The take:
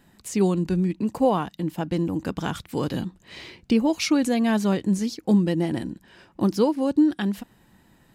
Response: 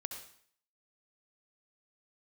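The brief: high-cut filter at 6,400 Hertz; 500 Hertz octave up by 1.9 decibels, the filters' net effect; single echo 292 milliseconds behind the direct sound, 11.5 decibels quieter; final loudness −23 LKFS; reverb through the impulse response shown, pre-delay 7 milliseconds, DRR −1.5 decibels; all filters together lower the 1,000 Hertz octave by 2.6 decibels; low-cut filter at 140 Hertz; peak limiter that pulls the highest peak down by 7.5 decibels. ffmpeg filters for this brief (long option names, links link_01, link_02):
-filter_complex "[0:a]highpass=140,lowpass=6400,equalizer=frequency=500:width_type=o:gain=3.5,equalizer=frequency=1000:width_type=o:gain=-5,alimiter=limit=-15.5dB:level=0:latency=1,aecho=1:1:292:0.266,asplit=2[link_01][link_02];[1:a]atrim=start_sample=2205,adelay=7[link_03];[link_02][link_03]afir=irnorm=-1:irlink=0,volume=3dB[link_04];[link_01][link_04]amix=inputs=2:normalize=0,volume=-1dB"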